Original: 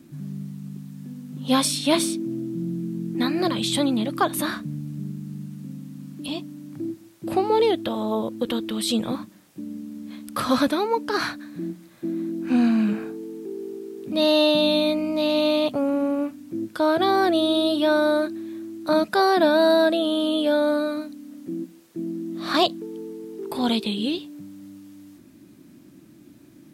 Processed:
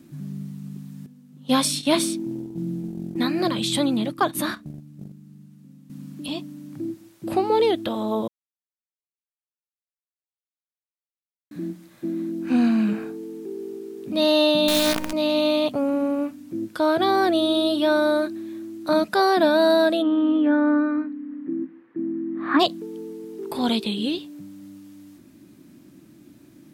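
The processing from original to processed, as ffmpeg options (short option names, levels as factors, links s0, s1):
-filter_complex "[0:a]asettb=1/sr,asplit=3[s0][s1][s2];[s0]atrim=end=1.064[s3];[s1]atrim=start=1.06:end=5.9,asetpts=PTS-STARTPTS,afade=t=in:d=0.004:c=qsin,afade=t=out:st=4.836:d=0.004:c=qsin,agate=range=0.251:threshold=0.0316:ratio=16:release=100:detection=peak[s4];[s2]atrim=start=5.896[s5];[s3][s4]acrossfade=d=0.004:c1=hsin:c2=qsin[s6];[s6][s5]acrossfade=d=0.004:c1=qsin:c2=hsin,asettb=1/sr,asplit=3[s7][s8][s9];[s7]atrim=end=14.684[s10];[s8]atrim=start=14.68:end=15.13,asetpts=PTS-STARTPTS,afade=t=in:d=0.004:c=qsin,afade=t=out:st=0.446:d=0.004:c=qsin,acrusher=bits=4:dc=4:mix=0:aa=0.000001[s11];[s9]atrim=start=15.126[s12];[s10][s11]acrossfade=d=0.004:c1=hsin:c2=qsin[s13];[s13][s12]acrossfade=d=0.004:c1=qsin:c2=hsin,asplit=3[s14][s15][s16];[s14]afade=t=out:st=20.01:d=0.02[s17];[s15]highpass=120,equalizer=f=180:t=q:w=4:g=-8,equalizer=f=280:t=q:w=4:g=9,equalizer=f=630:t=q:w=4:g=-9,equalizer=f=1100:t=q:w=4:g=4,equalizer=f=1800:t=q:w=4:g=6,lowpass=f=2100:w=0.5412,lowpass=f=2100:w=1.3066,afade=t=in:st=20.01:d=0.02,afade=t=out:st=22.59:d=0.02[s18];[s16]afade=t=in:st=22.59:d=0.02[s19];[s17][s18][s19]amix=inputs=3:normalize=0,asplit=3[s20][s21][s22];[s20]atrim=end=8.28,asetpts=PTS-STARTPTS,afade=t=out:st=8.276:d=0.004:c=hsin[s23];[s21]atrim=start=8.28:end=11.51,asetpts=PTS-STARTPTS,volume=0[s24];[s22]atrim=start=11.51,asetpts=PTS-STARTPTS,afade=t=in:d=0.004:c=hsin[s25];[s23][s24][s25]concat=n=3:v=0:a=1"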